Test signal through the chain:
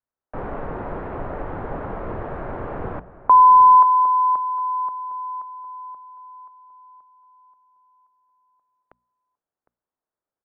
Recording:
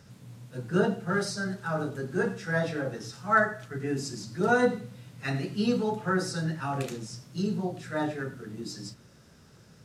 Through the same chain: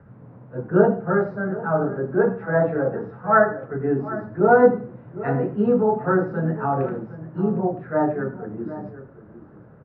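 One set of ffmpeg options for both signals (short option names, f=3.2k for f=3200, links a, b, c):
-filter_complex "[0:a]lowpass=f=1.5k:w=0.5412,lowpass=f=1.5k:w=1.3066,bandreject=f=60:t=h:w=6,bandreject=f=120:t=h:w=6,bandreject=f=180:t=h:w=6,bandreject=f=240:t=h:w=6,acrossover=split=400|810[a][b][c];[b]dynaudnorm=f=120:g=3:m=7dB[d];[a][d][c]amix=inputs=3:normalize=0,asplit=2[e][f];[f]adelay=758,volume=-14dB,highshelf=f=4k:g=-17.1[g];[e][g]amix=inputs=2:normalize=0,volume=6dB"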